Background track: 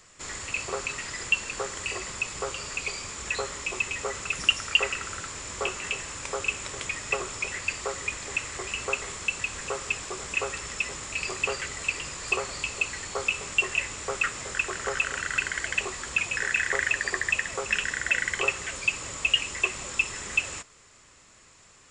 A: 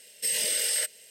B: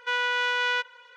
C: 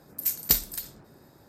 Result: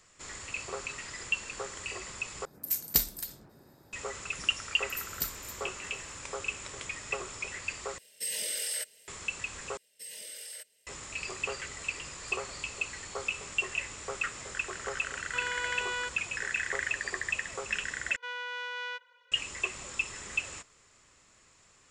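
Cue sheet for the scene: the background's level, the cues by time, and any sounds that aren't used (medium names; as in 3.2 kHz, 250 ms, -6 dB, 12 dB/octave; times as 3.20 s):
background track -6.5 dB
2.45 s: replace with C -3.5 dB
4.71 s: add C -12 dB
7.98 s: replace with A -7 dB
9.77 s: replace with A -17 dB
15.27 s: add B -9.5 dB + bass shelf 430 Hz +5.5 dB
18.16 s: replace with B -12 dB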